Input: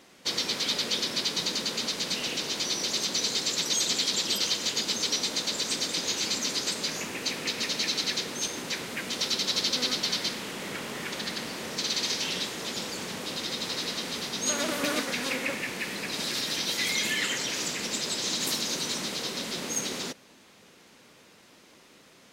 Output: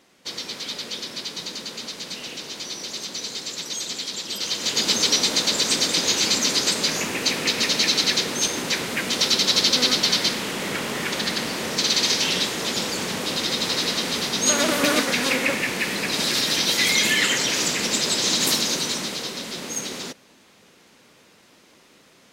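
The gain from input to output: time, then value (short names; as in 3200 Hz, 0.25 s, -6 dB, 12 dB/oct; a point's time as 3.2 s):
4.28 s -3 dB
4.87 s +8.5 dB
18.52 s +8.5 dB
19.41 s +1.5 dB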